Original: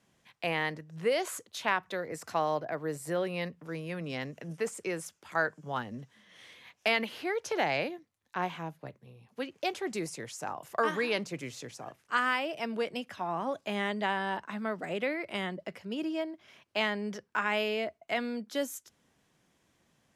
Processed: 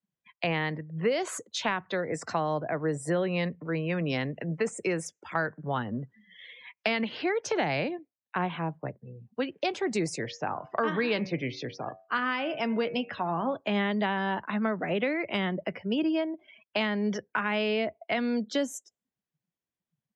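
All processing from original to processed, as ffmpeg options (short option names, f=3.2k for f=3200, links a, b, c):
-filter_complex "[0:a]asettb=1/sr,asplit=3[a][b][c];[a]atrim=end=10.194[d];[b]atrim=start=10.19:end=13.57,asetpts=PTS-STARTPTS,afade=t=in:d=0.004:c=qsin,afade=t=out:st=3.376:d=0.004:c=qsin,lowpass=f=5.3k:w=0.5412,lowpass=f=5.3k:w=1.3066,bandreject=f=94.57:t=h:w=4,bandreject=f=189.14:t=h:w=4,bandreject=f=283.71:t=h:w=4,bandreject=f=378.28:t=h:w=4,bandreject=f=472.85:t=h:w=4,bandreject=f=567.42:t=h:w=4,bandreject=f=661.99:t=h:w=4,bandreject=f=756.56:t=h:w=4,bandreject=f=851.13:t=h:w=4,bandreject=f=945.7:t=h:w=4,bandreject=f=1.04027k:t=h:w=4,bandreject=f=1.13484k:t=h:w=4,bandreject=f=1.22941k:t=h:w=4,bandreject=f=1.32398k:t=h:w=4,bandreject=f=1.41855k:t=h:w=4,bandreject=f=1.51312k:t=h:w=4,bandreject=f=1.60769k:t=h:w=4,bandreject=f=1.70226k:t=h:w=4,bandreject=f=1.79683k:t=h:w=4,bandreject=f=1.8914k:t=h:w=4,bandreject=f=1.98597k:t=h:w=4,bandreject=f=2.08054k:t=h:w=4,bandreject=f=2.17511k:t=h:w=4,bandreject=f=2.26968k:t=h:w=4,bandreject=f=2.36425k:t=h:w=4,bandreject=f=2.45882k:t=h:w=4,bandreject=f=2.55339k:t=h:w=4,bandreject=f=2.64796k:t=h:w=4,bandreject=f=2.74253k:t=h:w=4[e];[c]atrim=start=13.566[f];[d][e]acrossfade=d=0.004:c1=hsin:c2=qsin[g];[g][f]acrossfade=d=0.004:c1=qsin:c2=hsin,lowpass=8.4k,afftdn=nr=34:nf=-52,acrossover=split=270[h][i];[i]acompressor=threshold=-37dB:ratio=3[j];[h][j]amix=inputs=2:normalize=0,volume=8.5dB"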